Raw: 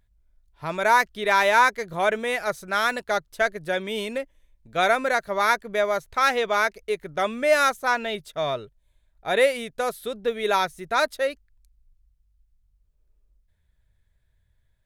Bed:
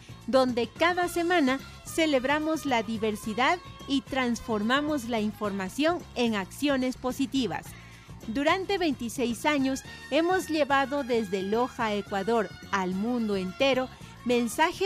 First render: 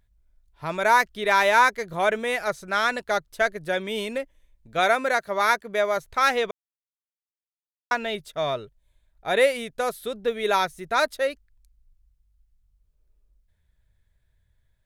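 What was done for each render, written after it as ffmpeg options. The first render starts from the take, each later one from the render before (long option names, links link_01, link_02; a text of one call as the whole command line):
ffmpeg -i in.wav -filter_complex "[0:a]asettb=1/sr,asplit=3[link_01][link_02][link_03];[link_01]atrim=end=2.484[link_04];[link_02]atrim=start=2.48:end=3.02,asetpts=PTS-STARTPTS,afade=type=in:duration=0.004:curve=qsin,afade=type=out:start_time=0.536:duration=0.004:curve=qsin,acrossover=split=9300[link_05][link_06];[link_06]acompressor=threshold=-55dB:ratio=4:attack=1:release=60[link_07];[link_05][link_07]amix=inputs=2:normalize=0[link_08];[link_03]atrim=start=3.016[link_09];[link_04][link_08]acrossfade=duration=0.004:curve1=hsin:curve2=qsin[link_10];[link_10][link_09]acrossfade=duration=0.004:curve1=qsin:curve2=hsin,asettb=1/sr,asplit=3[link_11][link_12][link_13];[link_11]atrim=end=4.794[link_14];[link_12]atrim=start=4.79:end=5.97,asetpts=PTS-STARTPTS,afade=type=in:duration=0.004:curve=qsin,afade=type=out:start_time=1.176:duration=0.004:curve=qsin,highpass=frequency=150:poles=1[link_15];[link_13]atrim=start=5.966[link_16];[link_14][link_15]acrossfade=duration=0.004:curve1=hsin:curve2=qsin[link_17];[link_17][link_16]acrossfade=duration=0.004:curve1=qsin:curve2=hsin,asplit=3[link_18][link_19][link_20];[link_18]atrim=end=6.51,asetpts=PTS-STARTPTS,afade=type=out:start_time=6.506:duration=0.004:curve=hsin[link_21];[link_19]atrim=start=6.51:end=7.91,asetpts=PTS-STARTPTS,volume=0[link_22];[link_20]atrim=start=7.91,asetpts=PTS-STARTPTS,afade=type=in:duration=0.004:curve=hsin[link_23];[link_21][link_22][link_23]concat=n=3:v=0:a=1" out.wav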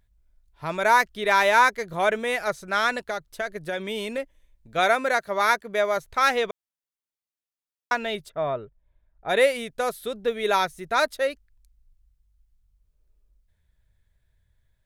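ffmpeg -i in.wav -filter_complex "[0:a]asettb=1/sr,asplit=3[link_01][link_02][link_03];[link_01]atrim=end=3.054[link_04];[link_02]atrim=start=3.05:end=4.18,asetpts=PTS-STARTPTS,afade=type=in:duration=0.004:curve=qsin,afade=type=out:start_time=1.126:duration=0.004:curve=qsin,acompressor=threshold=-24dB:ratio=6:attack=3.2:release=140:knee=1:detection=peak[link_05];[link_03]atrim=start=4.176[link_06];[link_04][link_05]acrossfade=duration=0.004:curve1=hsin:curve2=qsin[link_07];[link_07][link_06]acrossfade=duration=0.004:curve1=qsin:curve2=hsin,asplit=3[link_08][link_09][link_10];[link_08]afade=type=out:start_time=8.28:duration=0.02[link_11];[link_09]lowpass=1600,afade=type=in:start_time=8.28:duration=0.02,afade=type=out:start_time=9.28:duration=0.02[link_12];[link_10]afade=type=in:start_time=9.28:duration=0.02[link_13];[link_11][link_12][link_13]amix=inputs=3:normalize=0" out.wav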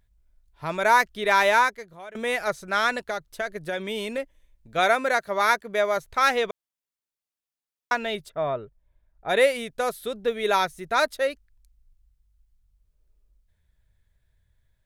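ffmpeg -i in.wav -filter_complex "[0:a]asplit=2[link_01][link_02];[link_01]atrim=end=2.15,asetpts=PTS-STARTPTS,afade=type=out:start_time=1.52:duration=0.63:curve=qua:silence=0.0891251[link_03];[link_02]atrim=start=2.15,asetpts=PTS-STARTPTS,afade=type=in:duration=0.004:curve=hsin:silence=0.0891251[link_04];[link_03][link_04]concat=n=2:v=0:a=1" out.wav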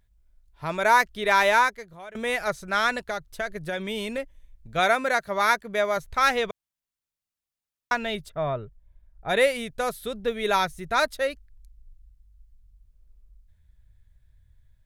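ffmpeg -i in.wav -af "asubboost=boost=2.5:cutoff=190" out.wav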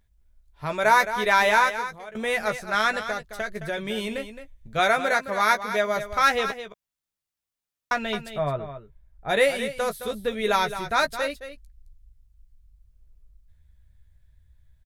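ffmpeg -i in.wav -filter_complex "[0:a]asplit=2[link_01][link_02];[link_02]adelay=14,volume=-8dB[link_03];[link_01][link_03]amix=inputs=2:normalize=0,asplit=2[link_04][link_05];[link_05]aecho=0:1:216:0.282[link_06];[link_04][link_06]amix=inputs=2:normalize=0" out.wav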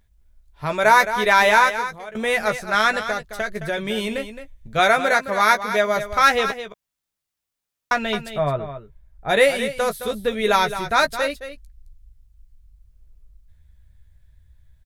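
ffmpeg -i in.wav -af "volume=4.5dB,alimiter=limit=-3dB:level=0:latency=1" out.wav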